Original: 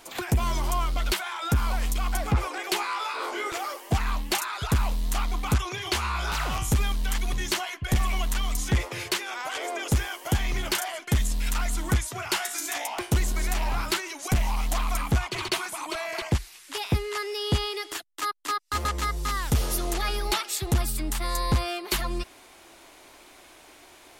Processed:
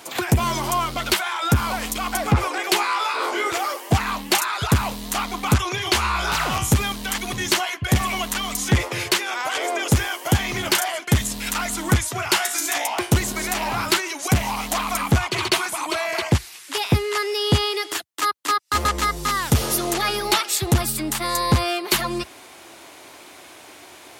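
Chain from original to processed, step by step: high-pass 76 Hz 24 dB/octave; trim +7.5 dB

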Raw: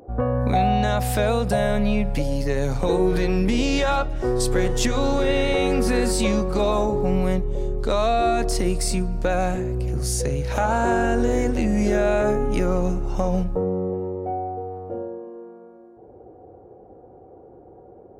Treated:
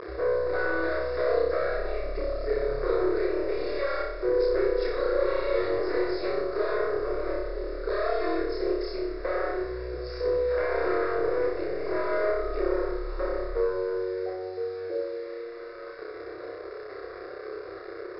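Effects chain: one-sided wavefolder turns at -22.5 dBFS; in parallel at +2 dB: compression, threshold -36 dBFS, peak gain reduction 18 dB; on the sum: bit crusher 6-bit; Chebyshev low-pass 5.2 kHz, order 10; resonant low shelf 280 Hz -8.5 dB, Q 3; static phaser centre 840 Hz, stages 6; upward compressor, threshold -27 dBFS; band-stop 2.5 kHz, Q 12; on a send: flutter echo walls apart 5.2 m, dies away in 0.69 s; on the sum: trim -7.5 dB

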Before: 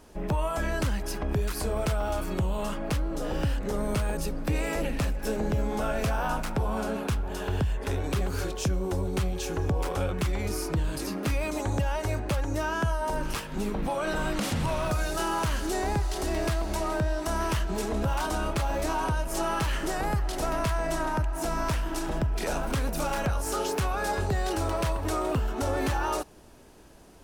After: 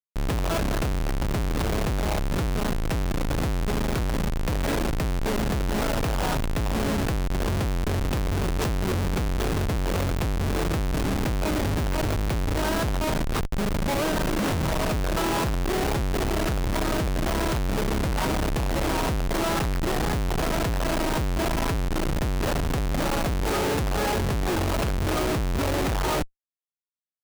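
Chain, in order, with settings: reverse echo 53 ms -22 dB; Schmitt trigger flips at -29 dBFS; trim +4 dB

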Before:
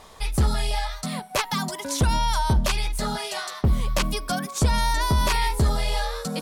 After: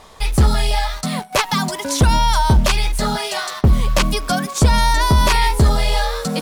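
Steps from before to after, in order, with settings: in parallel at -6 dB: word length cut 6-bit, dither none; on the sum: treble shelf 9.9 kHz -4.5 dB; trim +4 dB

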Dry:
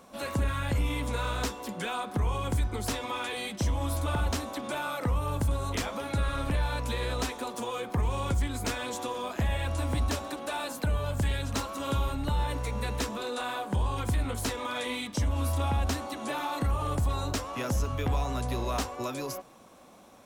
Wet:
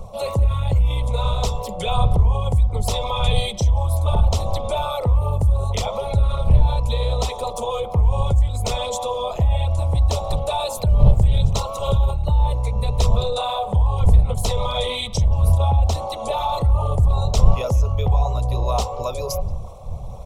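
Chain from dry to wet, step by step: resonances exaggerated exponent 1.5; wind noise 87 Hz -33 dBFS; speakerphone echo 180 ms, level -20 dB; dynamic bell 3.5 kHz, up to +5 dB, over -56 dBFS, Q 4.1; static phaser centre 670 Hz, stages 4; reverse; upward compressor, threshold -40 dBFS; reverse; band-stop 370 Hz, Q 12; loudness maximiser +13 dB; trim -1 dB

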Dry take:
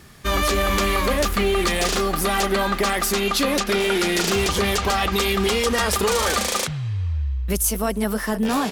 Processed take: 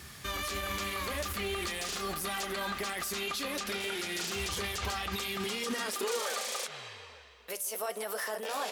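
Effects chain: tilt shelf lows -5 dB; compression, threshold -24 dBFS, peak gain reduction 11 dB; peak limiter -24 dBFS, peak gain reduction 10.5 dB; high-pass sweep 72 Hz -> 540 Hz, 5.05–6.31 s; tape echo 155 ms, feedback 85%, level -16.5 dB, low-pass 1 kHz; flange 0.46 Hz, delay 5.1 ms, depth 7.7 ms, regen -76%; trim +2 dB

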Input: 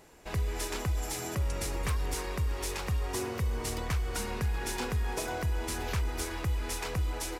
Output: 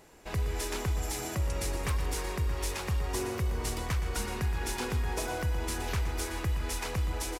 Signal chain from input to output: multi-tap echo 119/160 ms -11/-17 dB

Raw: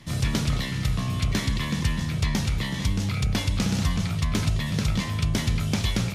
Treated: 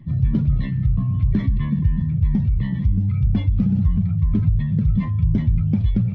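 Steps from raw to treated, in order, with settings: spectral contrast enhancement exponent 1.8; tape spacing loss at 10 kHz 39 dB; trim +7 dB

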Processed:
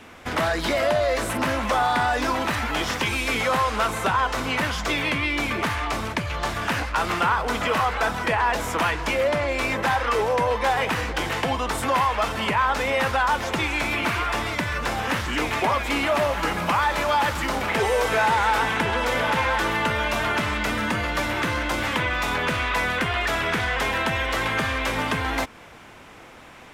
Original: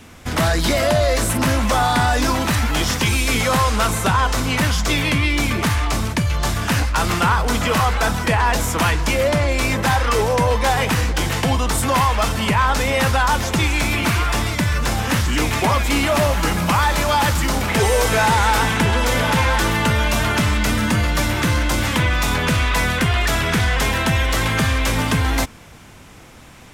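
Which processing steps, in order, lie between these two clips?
tone controls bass -11 dB, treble -10 dB; in parallel at +1.5 dB: compression, threshold -27 dBFS, peak gain reduction 12 dB; 6.12–6.54 s: on the sum: loudspeaker Doppler distortion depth 0.14 ms; trim -5.5 dB

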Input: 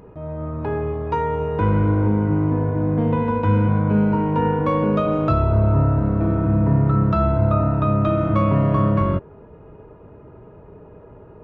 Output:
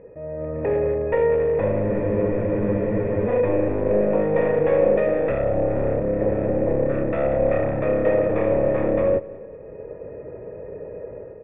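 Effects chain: one-sided wavefolder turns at -20.5 dBFS; dynamic bell 1.8 kHz, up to -7 dB, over -43 dBFS, Q 2; in parallel at -2 dB: peak limiter -14 dBFS, peak gain reduction 7 dB; on the sum: level rider gain up to 9 dB; cascade formant filter e; on a send: feedback delay 184 ms, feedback 52%, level -21.5 dB; on the sum: spectral freeze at 1.91 s, 1.36 s; trim +5.5 dB

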